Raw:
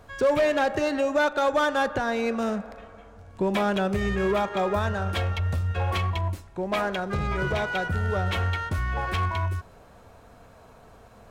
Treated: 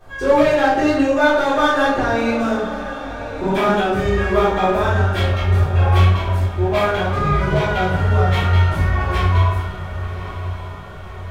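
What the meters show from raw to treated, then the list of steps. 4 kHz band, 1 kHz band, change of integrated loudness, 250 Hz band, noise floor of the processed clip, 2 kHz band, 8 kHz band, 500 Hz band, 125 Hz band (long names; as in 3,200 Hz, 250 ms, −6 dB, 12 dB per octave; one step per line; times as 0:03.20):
+7.0 dB, +8.5 dB, +8.5 dB, +9.0 dB, −31 dBFS, +7.5 dB, can't be measured, +7.5 dB, +11.5 dB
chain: chorus effect 2.1 Hz, delay 18.5 ms, depth 3.3 ms
on a send: feedback delay with all-pass diffusion 1,107 ms, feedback 54%, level −12.5 dB
on the sum: rectangular room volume 190 cubic metres, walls mixed, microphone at 3.7 metres
level −1.5 dB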